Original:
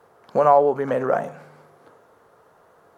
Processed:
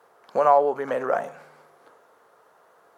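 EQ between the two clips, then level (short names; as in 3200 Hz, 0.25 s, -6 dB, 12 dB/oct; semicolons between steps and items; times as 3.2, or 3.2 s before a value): HPF 570 Hz 6 dB/oct; 0.0 dB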